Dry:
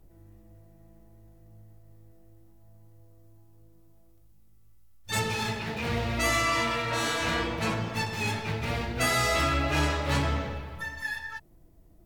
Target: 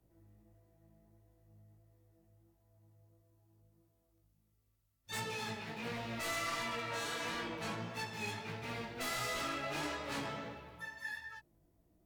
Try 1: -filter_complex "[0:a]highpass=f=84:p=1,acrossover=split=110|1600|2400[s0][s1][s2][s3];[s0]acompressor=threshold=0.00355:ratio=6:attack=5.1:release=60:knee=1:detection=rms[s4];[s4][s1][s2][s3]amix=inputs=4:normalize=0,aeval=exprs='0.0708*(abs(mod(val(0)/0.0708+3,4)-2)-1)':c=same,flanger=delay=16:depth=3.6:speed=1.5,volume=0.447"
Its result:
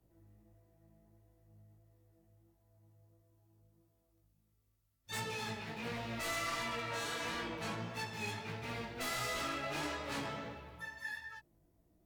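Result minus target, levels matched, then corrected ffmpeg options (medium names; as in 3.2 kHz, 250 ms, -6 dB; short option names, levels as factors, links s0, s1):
compression: peak gain reduction -6.5 dB
-filter_complex "[0:a]highpass=f=84:p=1,acrossover=split=110|1600|2400[s0][s1][s2][s3];[s0]acompressor=threshold=0.00141:ratio=6:attack=5.1:release=60:knee=1:detection=rms[s4];[s4][s1][s2][s3]amix=inputs=4:normalize=0,aeval=exprs='0.0708*(abs(mod(val(0)/0.0708+3,4)-2)-1)':c=same,flanger=delay=16:depth=3.6:speed=1.5,volume=0.447"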